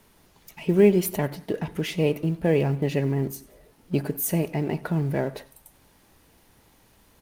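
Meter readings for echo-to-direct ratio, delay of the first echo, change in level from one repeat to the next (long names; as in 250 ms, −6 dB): −21.0 dB, 94 ms, −6.5 dB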